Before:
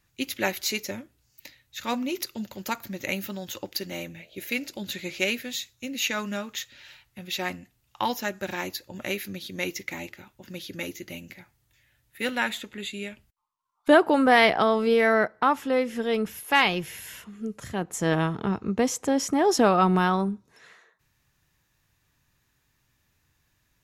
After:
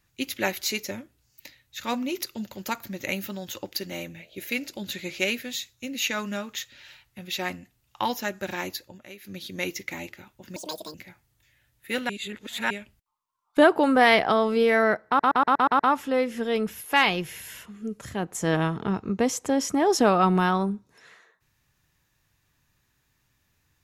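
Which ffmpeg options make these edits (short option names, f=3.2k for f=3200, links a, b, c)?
-filter_complex "[0:a]asplit=13[a][b][c][d][e][f][g][h][i][j][k][l][m];[a]atrim=end=9,asetpts=PTS-STARTPTS,afade=t=out:st=8.75:d=0.25:c=qsin:silence=0.188365[n];[b]atrim=start=9:end=9.21,asetpts=PTS-STARTPTS,volume=-14.5dB[o];[c]atrim=start=9.21:end=10.564,asetpts=PTS-STARTPTS,afade=t=in:d=0.25:c=qsin:silence=0.188365[p];[d]atrim=start=10.56:end=11.25,asetpts=PTS-STARTPTS,asetrate=79380,aresample=44100[q];[e]atrim=start=11.246:end=12.402[r];[f]atrim=start=12.398:end=13.012,asetpts=PTS-STARTPTS,areverse[s];[g]atrim=start=13.008:end=15.502[t];[h]atrim=start=15.378:end=15.502[u];[i]atrim=start=15.378:end=15.502[v];[j]atrim=start=15.378:end=15.502[w];[k]atrim=start=15.378:end=15.502[x];[l]atrim=start=15.378:end=15.502[y];[m]atrim=start=15.378[z];[n][o][p]concat=n=3:v=0:a=1[aa];[aa][q]acrossfade=d=0.004:c1=hsin:c2=hsin[ab];[ab][r]acrossfade=d=0.004:c1=hsin:c2=hsin[ac];[ac][s]acrossfade=d=0.004:c1=hsin:c2=hsin[ad];[ad][t]acrossfade=d=0.004:c1=hsin:c2=hsin[ae];[ae][u]acrossfade=d=0.004:c1=hsin:c2=hsin[af];[af][v]acrossfade=d=0.004:c1=hsin:c2=hsin[ag];[ag][w]acrossfade=d=0.004:c1=hsin:c2=hsin[ah];[ah][x]acrossfade=d=0.004:c1=hsin:c2=hsin[ai];[ai][y]acrossfade=d=0.004:c1=hsin:c2=hsin[aj];[aj][z]acrossfade=d=0.004:c1=hsin:c2=hsin"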